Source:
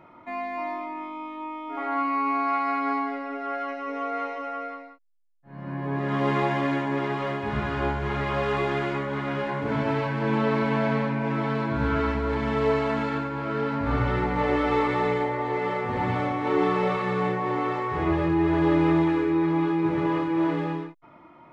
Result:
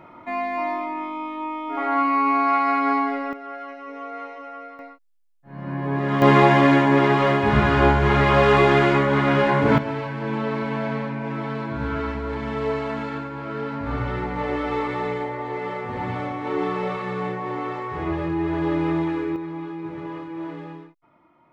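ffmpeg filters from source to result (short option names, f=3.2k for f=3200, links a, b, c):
-af "asetnsamples=n=441:p=0,asendcmd='3.33 volume volume -4.5dB;4.79 volume volume 4dB;6.22 volume volume 10dB;9.78 volume volume -2dB;19.36 volume volume -8.5dB',volume=5.5dB"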